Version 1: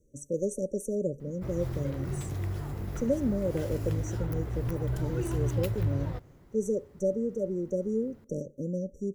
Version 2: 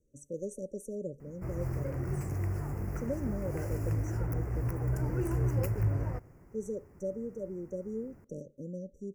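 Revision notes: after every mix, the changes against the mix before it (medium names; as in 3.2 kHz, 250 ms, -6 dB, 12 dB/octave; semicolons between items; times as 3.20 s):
speech -8.0 dB; master: add Butterworth band-stop 3.6 kHz, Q 1.2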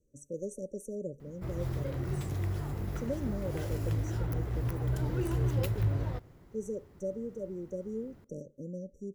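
master: remove Butterworth band-stop 3.6 kHz, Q 1.2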